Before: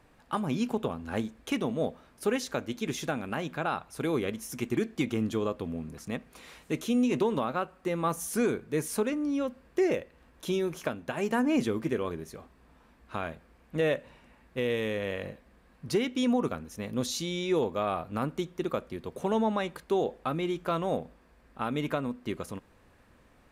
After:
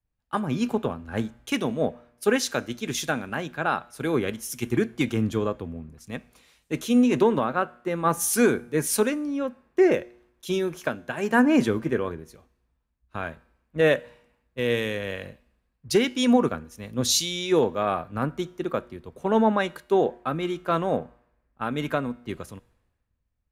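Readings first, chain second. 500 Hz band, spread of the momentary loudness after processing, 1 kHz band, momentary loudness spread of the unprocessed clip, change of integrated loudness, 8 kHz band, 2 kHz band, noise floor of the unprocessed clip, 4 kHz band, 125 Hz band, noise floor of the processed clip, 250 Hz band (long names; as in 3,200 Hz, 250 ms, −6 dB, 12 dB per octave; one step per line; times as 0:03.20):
+5.5 dB, 14 LU, +5.5 dB, 11 LU, +6.0 dB, +10.0 dB, +7.5 dB, −61 dBFS, +7.5 dB, +4.5 dB, −75 dBFS, +5.0 dB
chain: dynamic equaliser 1,600 Hz, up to +6 dB, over −54 dBFS, Q 5
tuned comb filter 120 Hz, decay 1.3 s, harmonics all, mix 40%
multiband upward and downward expander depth 100%
level +8.5 dB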